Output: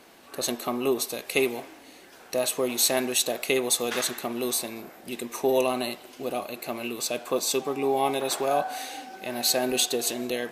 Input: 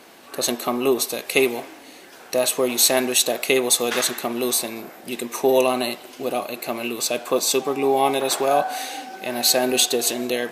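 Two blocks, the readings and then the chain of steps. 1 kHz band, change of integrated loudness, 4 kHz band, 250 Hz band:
-6.0 dB, -6.0 dB, -6.0 dB, -5.0 dB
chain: bass shelf 80 Hz +11 dB; trim -6 dB

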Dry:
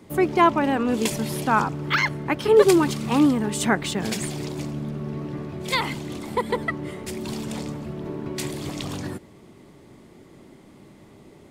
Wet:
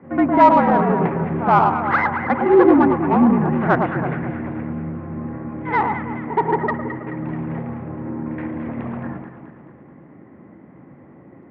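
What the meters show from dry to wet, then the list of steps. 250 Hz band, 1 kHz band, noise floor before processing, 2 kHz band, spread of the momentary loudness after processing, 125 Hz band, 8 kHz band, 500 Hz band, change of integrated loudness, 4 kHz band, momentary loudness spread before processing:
+5.0 dB, +8.0 dB, -50 dBFS, +2.0 dB, 16 LU, +4.5 dB, under -30 dB, +3.0 dB, +5.0 dB, under -10 dB, 14 LU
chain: tracing distortion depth 0.28 ms; on a send: echo whose repeats swap between lows and highs 108 ms, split 1.3 kHz, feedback 72%, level -5 dB; on the sum: mistuned SSB -58 Hz 190–2100 Hz; dynamic bell 850 Hz, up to +6 dB, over -33 dBFS, Q 1.1; pre-echo 72 ms -13 dB; in parallel at -5 dB: saturation -18.5 dBFS, distortion -7 dB; on the sum: distance through air 140 m

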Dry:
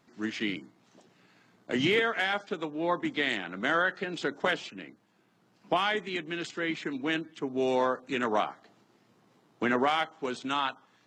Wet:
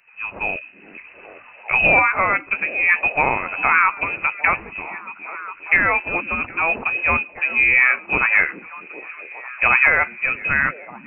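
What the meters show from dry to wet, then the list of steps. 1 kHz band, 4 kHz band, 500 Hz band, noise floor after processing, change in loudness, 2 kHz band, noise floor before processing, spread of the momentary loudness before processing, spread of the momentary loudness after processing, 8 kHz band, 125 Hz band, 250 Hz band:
+9.5 dB, no reading, +1.5 dB, -45 dBFS, +13.0 dB, +16.0 dB, -67 dBFS, 9 LU, 18 LU, under -30 dB, +7.0 dB, -2.5 dB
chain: level rider gain up to 11 dB; in parallel at -12 dB: bit crusher 5-bit; on the sum: frequency inversion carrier 2.8 kHz; repeats whose band climbs or falls 408 ms, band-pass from 260 Hz, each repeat 0.7 oct, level -8 dB; tape noise reduction on one side only encoder only; trim -1 dB

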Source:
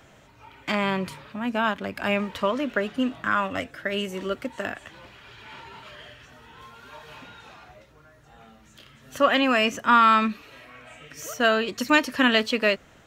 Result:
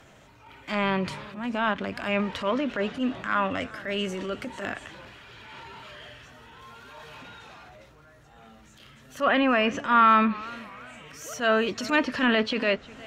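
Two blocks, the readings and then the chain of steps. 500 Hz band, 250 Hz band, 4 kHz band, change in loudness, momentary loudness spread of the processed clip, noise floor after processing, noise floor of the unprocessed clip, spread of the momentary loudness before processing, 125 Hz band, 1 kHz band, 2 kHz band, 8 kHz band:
-1.5 dB, -1.0 dB, -4.0 dB, -2.0 dB, 22 LU, -54 dBFS, -54 dBFS, 20 LU, 0.0 dB, -1.5 dB, -2.5 dB, -3.5 dB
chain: transient shaper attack -9 dB, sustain +4 dB; low-pass that closes with the level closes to 2.4 kHz, closed at -18 dBFS; modulated delay 355 ms, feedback 35%, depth 129 cents, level -20.5 dB

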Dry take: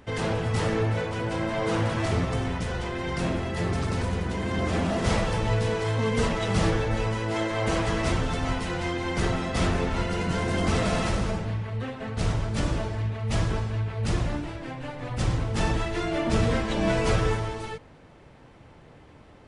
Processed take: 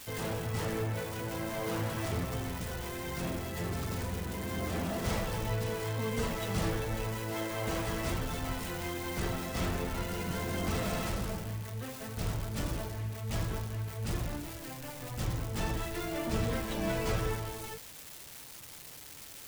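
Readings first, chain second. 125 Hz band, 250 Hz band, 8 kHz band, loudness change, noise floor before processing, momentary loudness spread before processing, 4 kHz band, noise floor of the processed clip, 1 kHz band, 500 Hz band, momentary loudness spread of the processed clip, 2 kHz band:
-8.5 dB, -8.5 dB, -2.5 dB, -8.0 dB, -51 dBFS, 6 LU, -7.0 dB, -48 dBFS, -8.5 dB, -8.5 dB, 9 LU, -8.0 dB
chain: zero-crossing glitches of -25.5 dBFS; trim -8.5 dB

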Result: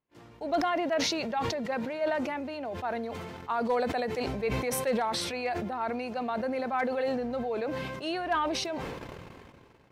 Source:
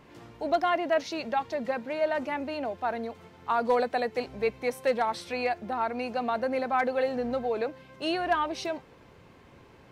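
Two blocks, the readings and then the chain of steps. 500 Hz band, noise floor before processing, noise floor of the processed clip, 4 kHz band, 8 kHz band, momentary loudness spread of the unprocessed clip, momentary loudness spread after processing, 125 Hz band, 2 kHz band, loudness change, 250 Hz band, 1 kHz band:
-2.0 dB, -55 dBFS, -55 dBFS, +3.5 dB, +10.0 dB, 8 LU, 8 LU, +8.0 dB, -1.5 dB, -1.5 dB, +1.5 dB, -2.5 dB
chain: gate -50 dBFS, range -30 dB; decay stretcher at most 25 dB/s; trim -4 dB

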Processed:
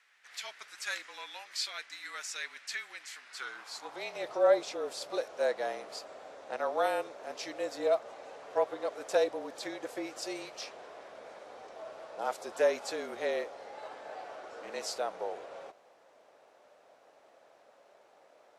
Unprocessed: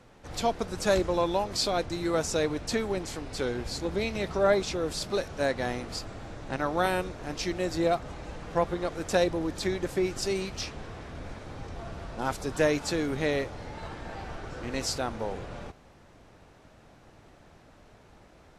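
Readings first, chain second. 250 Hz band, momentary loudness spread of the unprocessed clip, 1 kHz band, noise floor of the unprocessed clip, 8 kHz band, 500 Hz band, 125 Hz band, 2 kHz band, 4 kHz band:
-14.5 dB, 14 LU, -5.0 dB, -56 dBFS, -7.0 dB, -4.0 dB, under -25 dB, -5.0 dB, -6.0 dB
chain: high-pass sweep 1.9 kHz -> 610 Hz, 3.14–4.28 s; frequency shift -36 Hz; trim -7 dB

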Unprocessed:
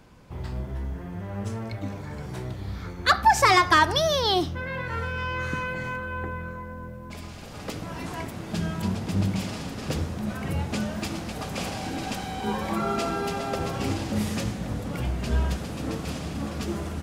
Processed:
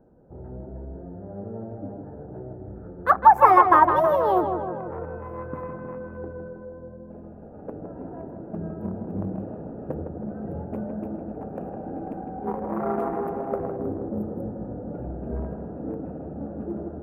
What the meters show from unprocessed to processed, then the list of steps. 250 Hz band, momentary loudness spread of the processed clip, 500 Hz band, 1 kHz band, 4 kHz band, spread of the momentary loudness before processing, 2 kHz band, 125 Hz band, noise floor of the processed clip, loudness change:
-1.0 dB, 22 LU, +3.5 dB, +5.0 dB, under -25 dB, 15 LU, -7.0 dB, -6.5 dB, -42 dBFS, +2.5 dB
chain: local Wiener filter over 41 samples; spectral replace 13.79–14.67 s, 610–9800 Hz after; FFT filter 110 Hz 0 dB, 460 Hz +12 dB, 1.1 kHz +14 dB, 4.4 kHz -24 dB, 7.8 kHz -16 dB, 13 kHz +7 dB; on a send: tape echo 158 ms, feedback 64%, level -6 dB, low-pass 2.2 kHz; on the sum: trim -8 dB

